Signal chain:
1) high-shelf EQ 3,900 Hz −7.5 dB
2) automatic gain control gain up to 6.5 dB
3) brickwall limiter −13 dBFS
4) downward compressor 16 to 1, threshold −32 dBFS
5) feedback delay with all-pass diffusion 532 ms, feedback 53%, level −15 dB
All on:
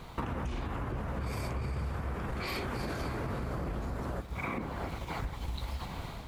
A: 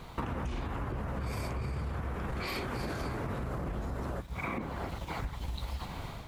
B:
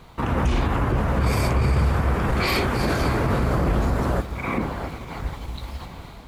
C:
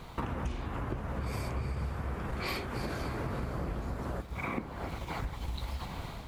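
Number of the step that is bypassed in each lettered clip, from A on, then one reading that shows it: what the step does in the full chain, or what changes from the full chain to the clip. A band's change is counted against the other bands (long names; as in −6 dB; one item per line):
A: 5, echo-to-direct ratio −13.5 dB to none audible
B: 4, average gain reduction 10.5 dB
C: 3, average gain reduction 2.0 dB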